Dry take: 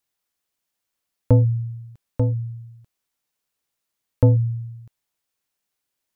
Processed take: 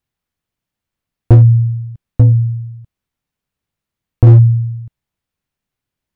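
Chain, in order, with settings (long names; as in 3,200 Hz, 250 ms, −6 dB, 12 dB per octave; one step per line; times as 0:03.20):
bass and treble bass +14 dB, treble −8 dB
0:01.34–0:04.27: downward compressor 2 to 1, threshold −5 dBFS, peak gain reduction 4 dB
hard clipping −2.5 dBFS, distortion −12 dB
level +1 dB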